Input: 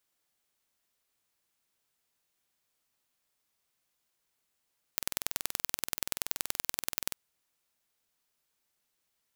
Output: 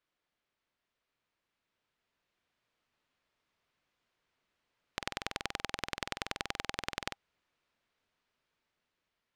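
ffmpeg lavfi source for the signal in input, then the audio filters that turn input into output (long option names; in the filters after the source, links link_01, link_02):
-f lavfi -i "aevalsrc='0.841*eq(mod(n,2100),0)*(0.5+0.5*eq(mod(n,4200),0))':duration=2.16:sample_rate=44100"
-af "lowpass=3100,bandreject=frequency=800:width=17,dynaudnorm=framelen=850:gausssize=5:maxgain=5dB"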